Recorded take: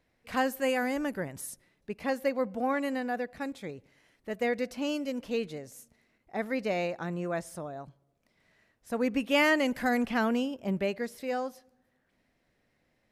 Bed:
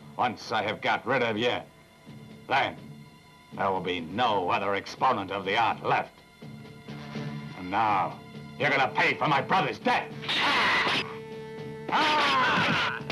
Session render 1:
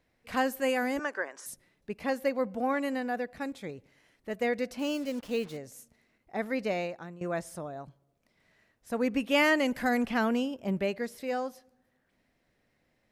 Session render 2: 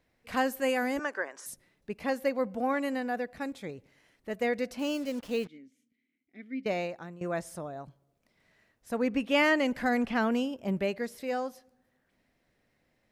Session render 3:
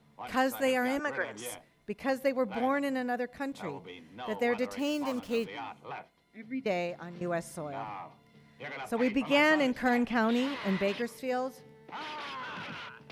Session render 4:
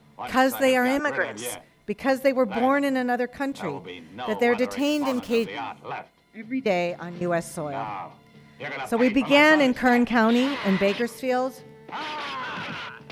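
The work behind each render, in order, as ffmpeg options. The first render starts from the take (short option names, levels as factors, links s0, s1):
-filter_complex "[0:a]asettb=1/sr,asplit=3[s0][s1][s2];[s0]atrim=end=0.994[s3];[s1]atrim=start=0.99:end=1.46,asetpts=PTS-STARTPTS,afade=t=in:d=0.004:c=qsin,afade=t=out:st=0.466:d=0.004:c=qsin,highpass=f=380:w=0.5412,highpass=f=380:w=1.3066,equalizer=f=1100:t=q:w=4:g=8,equalizer=f=1600:t=q:w=4:g=9,equalizer=f=3800:t=q:w=4:g=-4,equalizer=f=5900:t=q:w=4:g=5,lowpass=f=7500:w=0.5412,lowpass=f=7500:w=1.3066[s4];[s2]atrim=start=1.456[s5];[s3][s4]acrossfade=d=0.004:c1=hsin:c2=qsin[s6];[s6][s5]acrossfade=d=0.004:c1=qsin:c2=hsin,asettb=1/sr,asplit=3[s7][s8][s9];[s7]atrim=end=4.794[s10];[s8]atrim=start=4.79:end=5.57,asetpts=PTS-STARTPTS,afade=t=in:d=0.004:c=qsin,afade=t=out:st=0.776:d=0.004:c=qsin,acrusher=bits=7:mix=0:aa=0.5[s11];[s9]atrim=start=5.566[s12];[s10][s11]acrossfade=d=0.004:c1=hsin:c2=qsin[s13];[s13][s12]acrossfade=d=0.004:c1=qsin:c2=hsin,asplit=2[s14][s15];[s14]atrim=end=7.21,asetpts=PTS-STARTPTS,afade=t=out:st=6.68:d=0.53:silence=0.158489[s16];[s15]atrim=start=7.21,asetpts=PTS-STARTPTS,afade=t=in:d=0.004:c=hsin:silence=0.158489[s17];[s16][s17]concat=n=2:v=0:a=1"
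-filter_complex "[0:a]asettb=1/sr,asplit=3[s0][s1][s2];[s0]atrim=end=5.474[s3];[s1]atrim=start=5.47:end=6.66,asetpts=PTS-STARTPTS,afade=t=in:d=0.004:c=qsin,afade=t=out:st=1.186:d=0.004:c=qsin,asplit=3[s4][s5][s6];[s4]bandpass=f=270:t=q:w=8,volume=1[s7];[s5]bandpass=f=2290:t=q:w=8,volume=0.501[s8];[s6]bandpass=f=3010:t=q:w=8,volume=0.355[s9];[s7][s8][s9]amix=inputs=3:normalize=0[s10];[s2]atrim=start=6.656[s11];[s3][s10]acrossfade=d=0.004:c1=hsin:c2=qsin[s12];[s12][s11]acrossfade=d=0.004:c1=qsin:c2=hsin,asettb=1/sr,asplit=3[s13][s14][s15];[s13]atrim=end=8.964[s16];[s14]atrim=start=8.96:end=10.32,asetpts=PTS-STARTPTS,afade=t=in:d=0.004:c=qsin,afade=t=out:st=1.356:d=0.004:c=qsin,highshelf=f=8900:g=-11[s17];[s15]atrim=start=10.316[s18];[s16][s17]acrossfade=d=0.004:c1=hsin:c2=qsin[s19];[s19][s18]acrossfade=d=0.004:c1=qsin:c2=hsin"
-filter_complex "[1:a]volume=0.15[s0];[0:a][s0]amix=inputs=2:normalize=0"
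-af "volume=2.51"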